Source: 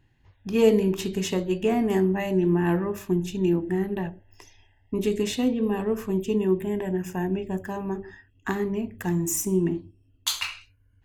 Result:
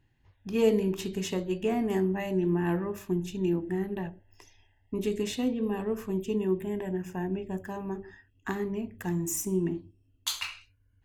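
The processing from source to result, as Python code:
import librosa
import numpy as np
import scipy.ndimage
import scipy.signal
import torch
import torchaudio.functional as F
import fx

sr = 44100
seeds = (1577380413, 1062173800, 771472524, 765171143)

y = fx.high_shelf(x, sr, hz=4700.0, db=-6.0, at=(6.98, 7.49))
y = y * librosa.db_to_amplitude(-5.0)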